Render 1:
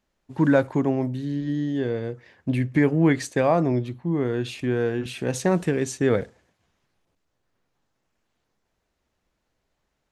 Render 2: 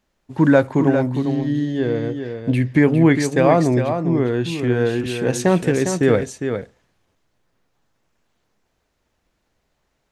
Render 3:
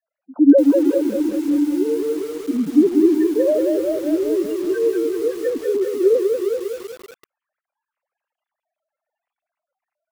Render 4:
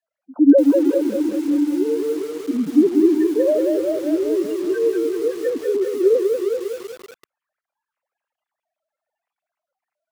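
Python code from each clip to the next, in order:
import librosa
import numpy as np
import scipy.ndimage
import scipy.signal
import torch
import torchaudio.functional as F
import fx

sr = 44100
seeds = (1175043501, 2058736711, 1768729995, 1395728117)

y1 = x + 10.0 ** (-7.5 / 20.0) * np.pad(x, (int(405 * sr / 1000.0), 0))[:len(x)]
y1 = y1 * librosa.db_to_amplitude(5.0)
y2 = fx.sine_speech(y1, sr)
y2 = fx.spec_gate(y2, sr, threshold_db=-10, keep='strong')
y2 = fx.echo_crushed(y2, sr, ms=191, feedback_pct=55, bits=6, wet_db=-4.0)
y2 = y2 * librosa.db_to_amplitude(-1.0)
y3 = scipy.ndimage.median_filter(y2, 3, mode='constant')
y3 = fx.low_shelf(y3, sr, hz=70.0, db=-9.5)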